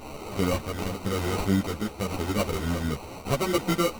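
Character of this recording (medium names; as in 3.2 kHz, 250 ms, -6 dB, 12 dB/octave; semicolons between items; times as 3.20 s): a quantiser's noise floor 6-bit, dither triangular; tremolo triangle 0.89 Hz, depth 45%; aliases and images of a low sample rate 1.7 kHz, jitter 0%; a shimmering, thickened sound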